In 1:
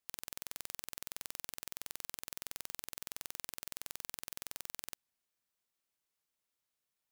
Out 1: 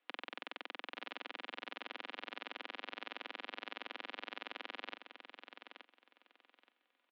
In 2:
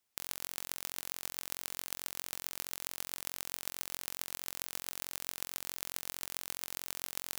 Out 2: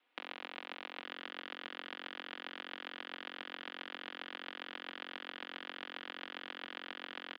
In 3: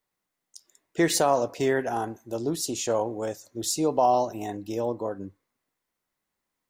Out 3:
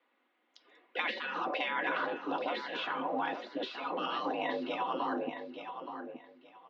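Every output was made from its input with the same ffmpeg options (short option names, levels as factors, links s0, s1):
-filter_complex "[0:a]afftfilt=real='re*lt(hypot(re,im),0.0794)':imag='im*lt(hypot(re,im),0.0794)':win_size=1024:overlap=0.75,aecho=1:1:4.3:0.41,acompressor=threshold=0.01:ratio=6,asplit=2[s0][s1];[s1]aecho=0:1:874|1748|2622:0.376|0.0789|0.0166[s2];[s0][s2]amix=inputs=2:normalize=0,highpass=f=180:t=q:w=0.5412,highpass=f=180:t=q:w=1.307,lowpass=f=3300:t=q:w=0.5176,lowpass=f=3300:t=q:w=0.7071,lowpass=f=3300:t=q:w=1.932,afreqshift=55,volume=3.55"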